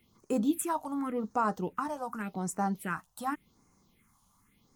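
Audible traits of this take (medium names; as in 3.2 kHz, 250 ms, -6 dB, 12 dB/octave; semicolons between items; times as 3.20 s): phasing stages 4, 0.88 Hz, lowest notch 340–3300 Hz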